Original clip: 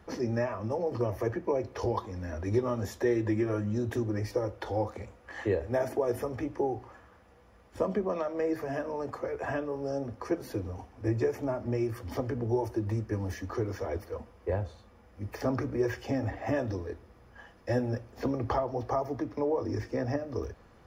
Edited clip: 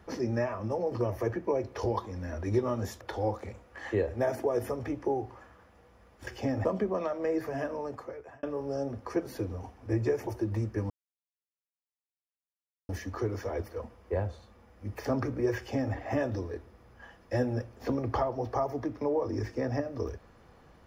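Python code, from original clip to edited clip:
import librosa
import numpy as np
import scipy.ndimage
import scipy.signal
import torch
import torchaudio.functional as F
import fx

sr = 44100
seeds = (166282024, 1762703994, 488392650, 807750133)

y = fx.edit(x, sr, fx.cut(start_s=3.01, length_s=1.53),
    fx.fade_out_span(start_s=8.87, length_s=0.71),
    fx.cut(start_s=11.42, length_s=1.2),
    fx.insert_silence(at_s=13.25, length_s=1.99),
    fx.duplicate(start_s=15.93, length_s=0.38, to_s=7.8), tone=tone)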